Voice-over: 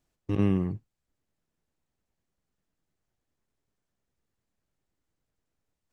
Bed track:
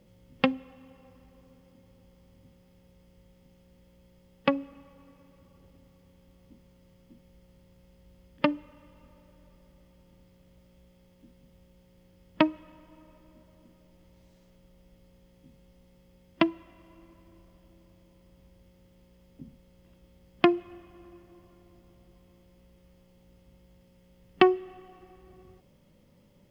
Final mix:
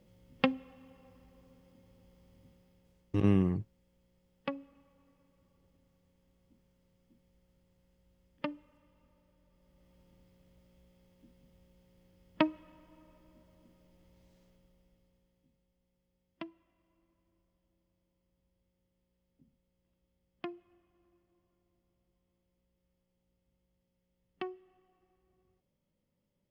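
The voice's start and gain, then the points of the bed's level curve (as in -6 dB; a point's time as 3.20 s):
2.85 s, -1.5 dB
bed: 2.48 s -4 dB
3.23 s -12.5 dB
9.47 s -12.5 dB
9.94 s -5.5 dB
14.42 s -5.5 dB
15.70 s -20.5 dB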